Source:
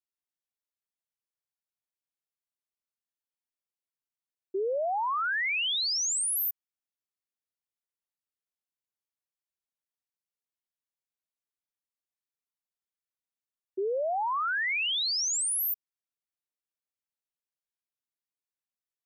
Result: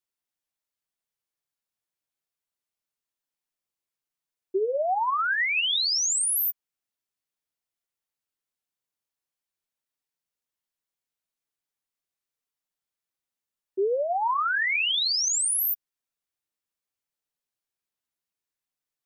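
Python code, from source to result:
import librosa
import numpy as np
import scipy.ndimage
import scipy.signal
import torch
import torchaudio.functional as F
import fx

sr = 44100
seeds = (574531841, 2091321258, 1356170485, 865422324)

y = fx.chorus_voices(x, sr, voices=4, hz=0.63, base_ms=10, depth_ms=3.4, mix_pct=25)
y = y * 10.0 ** (6.0 / 20.0)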